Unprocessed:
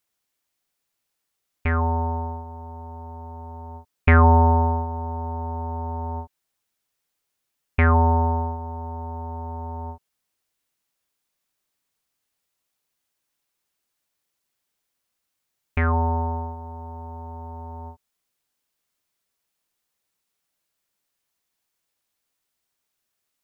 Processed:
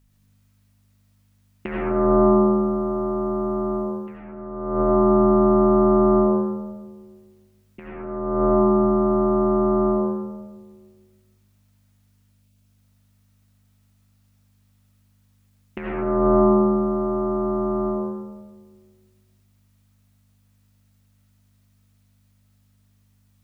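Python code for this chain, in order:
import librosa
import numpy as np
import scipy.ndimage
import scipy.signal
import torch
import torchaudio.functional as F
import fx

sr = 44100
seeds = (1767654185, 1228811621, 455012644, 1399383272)

y = x * np.sin(2.0 * np.pi * 290.0 * np.arange(len(x)) / sr)
y = fx.over_compress(y, sr, threshold_db=-28.0, ratio=-0.5)
y = fx.add_hum(y, sr, base_hz=50, snr_db=29)
y = fx.spec_erase(y, sr, start_s=12.32, length_s=0.24, low_hz=710.0, high_hz=2100.0)
y = fx.rev_freeverb(y, sr, rt60_s=1.5, hf_ratio=0.3, predelay_ms=45, drr_db=-3.0)
y = y * 10.0 ** (2.5 / 20.0)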